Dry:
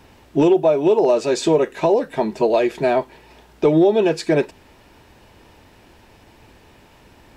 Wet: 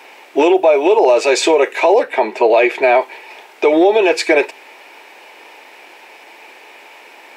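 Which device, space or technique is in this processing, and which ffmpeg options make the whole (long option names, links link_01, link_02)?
laptop speaker: -filter_complex "[0:a]asettb=1/sr,asplit=3[link_01][link_02][link_03];[link_01]atrim=end=2.034[link_04];[link_02]atrim=start=2.03:end=2.95,asetpts=PTS-STARTPTS,afade=type=in:duration=0.004:curve=qsin,afade=type=out:start_time=0.916:duration=0.004:curve=qsin,bass=frequency=250:gain=3,treble=frequency=4000:gain=-7[link_05];[link_03]atrim=start=2.946[link_06];[link_04][link_05]acrossfade=duration=0.004:curve1=hsin:curve2=qsin[link_07];[link_07][link_06]acrossfade=duration=0.004:curve1=qsin:curve2=hsin,highpass=frequency=380:width=0.5412,highpass=frequency=380:width=1.3066,equalizer=frequency=820:width_type=o:width=0.43:gain=4.5,equalizer=frequency=2300:width_type=o:width=0.53:gain=11,alimiter=limit=-11dB:level=0:latency=1:release=43,volume=8dB"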